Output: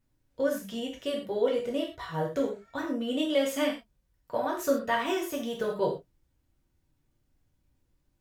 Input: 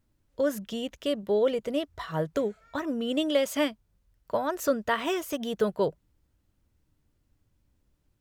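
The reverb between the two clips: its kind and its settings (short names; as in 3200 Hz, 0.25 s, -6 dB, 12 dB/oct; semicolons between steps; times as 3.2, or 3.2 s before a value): non-linear reverb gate 0.15 s falling, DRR -2.5 dB; gain -5.5 dB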